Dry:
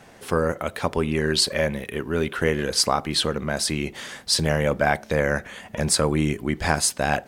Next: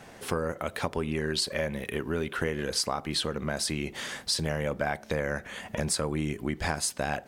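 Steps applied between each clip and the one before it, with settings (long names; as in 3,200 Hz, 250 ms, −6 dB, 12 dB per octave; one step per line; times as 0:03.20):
downward compressor 3 to 1, threshold −28 dBFS, peak gain reduction 10.5 dB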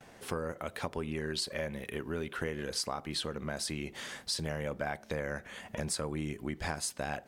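noise gate with hold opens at −43 dBFS
level −6 dB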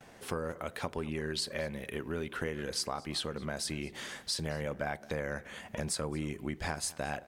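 slap from a distant wall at 38 metres, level −20 dB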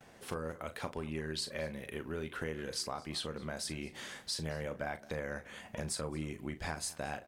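double-tracking delay 38 ms −11 dB
level −3.5 dB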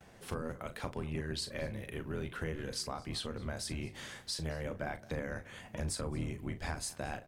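sub-octave generator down 1 octave, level +2 dB
level −1 dB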